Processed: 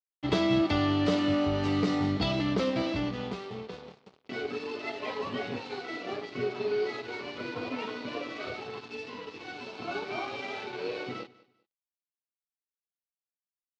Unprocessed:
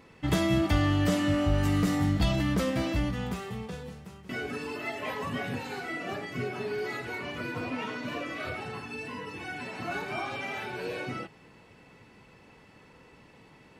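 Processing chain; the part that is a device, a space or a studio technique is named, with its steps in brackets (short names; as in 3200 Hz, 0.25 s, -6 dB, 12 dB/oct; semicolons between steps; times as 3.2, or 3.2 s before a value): blown loudspeaker (crossover distortion -43 dBFS; speaker cabinet 130–5200 Hz, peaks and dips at 160 Hz -8 dB, 420 Hz +6 dB, 1700 Hz -6 dB, 4200 Hz +4 dB); 9.52–10.05 notch 1900 Hz, Q 6.7; feedback echo 0.197 s, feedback 25%, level -21.5 dB; gain +1.5 dB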